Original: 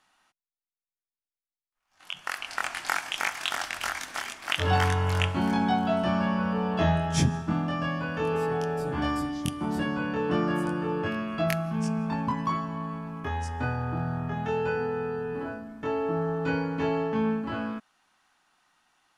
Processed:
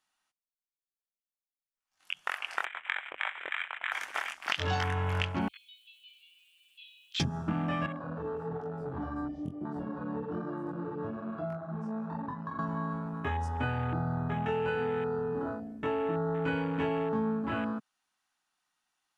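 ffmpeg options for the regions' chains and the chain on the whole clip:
-filter_complex "[0:a]asettb=1/sr,asplit=3[s0][s1][s2];[s0]atrim=end=2.654[s3];[s1]atrim=start=2.65:end=3.92,asetpts=PTS-STARTPTS,afade=t=in:d=0.004:c=qsin,afade=t=out:st=1.266:d=0.004:c=qsin,highshelf=f=2000:g=-12,lowpass=f=2600:t=q:w=0.5098,lowpass=f=2600:t=q:w=0.6013,lowpass=f=2600:t=q:w=0.9,lowpass=f=2600:t=q:w=2.563,afreqshift=-3100[s4];[s2]atrim=start=3.916[s5];[s3][s4]acrossfade=d=0.004:c1=hsin:c2=qsin[s6];[s6][s5]acrossfade=d=0.004:c1=qsin:c2=hsin,asettb=1/sr,asplit=3[s7][s8][s9];[s7]atrim=end=5.484[s10];[s8]atrim=start=5.48:end=7.2,asetpts=PTS-STARTPTS,afade=t=in:d=0.004:c=qsin,afade=t=out:st=1.716:d=0.004:c=qsin,asuperpass=centerf=3200:order=12:qfactor=1.8,aeval=exprs='val(0)*gte(abs(val(0)),0.00141)':c=same[s11];[s9]atrim=start=7.196[s12];[s10][s11]acrossfade=d=0.004:c1=hsin:c2=qsin[s13];[s13][s12]acrossfade=d=0.004:c1=qsin:c2=hsin,asettb=1/sr,asplit=3[s14][s15][s16];[s14]atrim=end=7.864[s17];[s15]atrim=start=7.86:end=12.59,asetpts=PTS-STARTPTS,afade=t=in:d=0.004:c=qsin,afade=t=out:st=4.726:d=0.004:c=qsin,acrossover=split=270|1600[s18][s19][s20];[s18]acompressor=threshold=0.0141:ratio=4[s21];[s19]acompressor=threshold=0.0178:ratio=4[s22];[s20]acompressor=threshold=0.00355:ratio=4[s23];[s21][s22][s23]amix=inputs=3:normalize=0,flanger=delay=19.5:depth=7.7:speed=1.1,aemphasis=mode=reproduction:type=75kf[s24];[s16]atrim=start=12.586[s25];[s17][s24]acrossfade=d=0.004:c1=hsin:c2=qsin[s26];[s26][s25]acrossfade=d=0.004:c1=qsin:c2=hsin,afwtdn=0.0126,highshelf=f=3200:g=9,acompressor=threshold=0.0447:ratio=6"

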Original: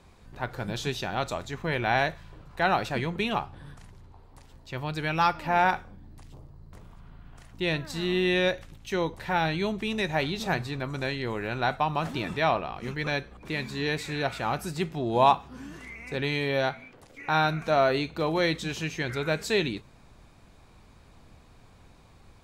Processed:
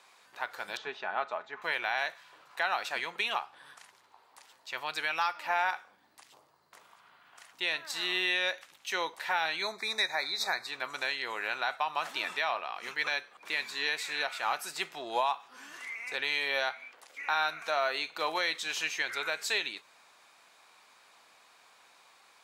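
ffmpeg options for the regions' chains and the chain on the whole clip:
-filter_complex "[0:a]asettb=1/sr,asplit=3[s0][s1][s2];[s0]atrim=end=0.774[s3];[s1]atrim=start=0.77:end=1.62,asetpts=PTS-STARTPTS,afade=t=in:d=0.004:c=qsin,afade=t=out:st=0.846:d=0.004:c=qsin,lowpass=1500,aecho=1:1:4.7:0.42,atrim=end_sample=37485[s4];[s2]atrim=start=1.616[s5];[s3][s4]acrossfade=d=0.004:c1=hsin:c2=qsin[s6];[s6][s5]acrossfade=d=0.004:c1=qsin:c2=hsin,asettb=1/sr,asplit=3[s7][s8][s9];[s7]atrim=end=9.624[s10];[s8]atrim=start=9.62:end=10.67,asetpts=PTS-STARTPTS,afade=t=in:d=0.004:c=qsin,afade=t=out:st=1.046:d=0.004:c=qsin,asuperstop=centerf=3000:order=8:qfactor=2.2,equalizer=f=3600:t=o:w=0.63:g=7.5[s11];[s9]atrim=start=10.666[s12];[s10][s11]acrossfade=d=0.004:c1=hsin:c2=qsin[s13];[s13][s12]acrossfade=d=0.004:c1=qsin:c2=hsin,highpass=970,alimiter=limit=0.0794:level=0:latency=1:release=329,volume=1.5"

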